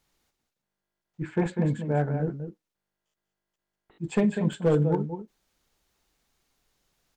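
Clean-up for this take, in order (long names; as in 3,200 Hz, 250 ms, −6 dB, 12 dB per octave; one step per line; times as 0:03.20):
clipped peaks rebuilt −15 dBFS
repair the gap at 0:00.78/0:04.53, 1.6 ms
echo removal 197 ms −8.5 dB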